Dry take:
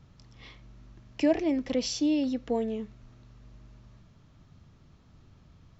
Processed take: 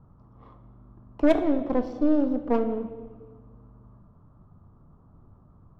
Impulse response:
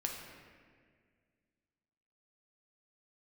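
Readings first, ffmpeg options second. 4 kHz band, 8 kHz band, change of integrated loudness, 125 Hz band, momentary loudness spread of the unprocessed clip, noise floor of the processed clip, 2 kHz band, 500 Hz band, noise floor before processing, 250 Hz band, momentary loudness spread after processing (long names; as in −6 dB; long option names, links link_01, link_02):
below −10 dB, can't be measured, +3.5 dB, +2.5 dB, 12 LU, −56 dBFS, +2.0 dB, +4.5 dB, −58 dBFS, +3.5 dB, 11 LU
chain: -filter_complex "[0:a]highshelf=frequency=1600:width_type=q:width=3:gain=-11,aeval=exprs='0.282*(cos(1*acos(clip(val(0)/0.282,-1,1)))-cos(1*PI/2))+0.0355*(cos(6*acos(clip(val(0)/0.282,-1,1)))-cos(6*PI/2))':channel_layout=same,adynamicsmooth=sensitivity=6.5:basefreq=1500,asplit=2[link_01][link_02];[1:a]atrim=start_sample=2205,asetrate=61740,aresample=44100[link_03];[link_02][link_03]afir=irnorm=-1:irlink=0,volume=0.5dB[link_04];[link_01][link_04]amix=inputs=2:normalize=0,volume=-2.5dB"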